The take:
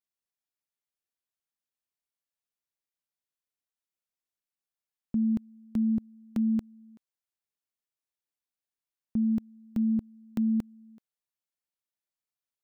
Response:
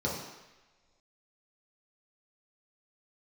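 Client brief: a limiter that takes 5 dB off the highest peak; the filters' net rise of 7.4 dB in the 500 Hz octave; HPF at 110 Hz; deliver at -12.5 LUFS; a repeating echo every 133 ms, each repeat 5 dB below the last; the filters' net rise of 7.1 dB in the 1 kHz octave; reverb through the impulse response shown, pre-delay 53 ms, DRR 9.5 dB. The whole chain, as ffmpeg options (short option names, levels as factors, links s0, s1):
-filter_complex "[0:a]highpass=110,equalizer=f=500:t=o:g=8.5,equalizer=f=1000:t=o:g=6,alimiter=limit=0.0631:level=0:latency=1,aecho=1:1:133|266|399|532|665|798|931:0.562|0.315|0.176|0.0988|0.0553|0.031|0.0173,asplit=2[s0][s1];[1:a]atrim=start_sample=2205,adelay=53[s2];[s1][s2]afir=irnorm=-1:irlink=0,volume=0.133[s3];[s0][s3]amix=inputs=2:normalize=0,volume=8.41"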